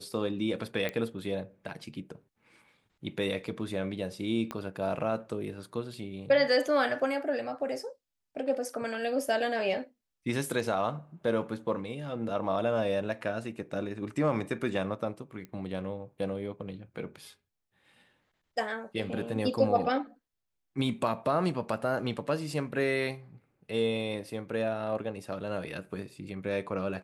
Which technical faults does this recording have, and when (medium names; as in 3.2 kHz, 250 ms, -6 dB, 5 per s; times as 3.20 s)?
0.89 s: pop -19 dBFS
4.51 s: pop -21 dBFS
15.45 s: pop -30 dBFS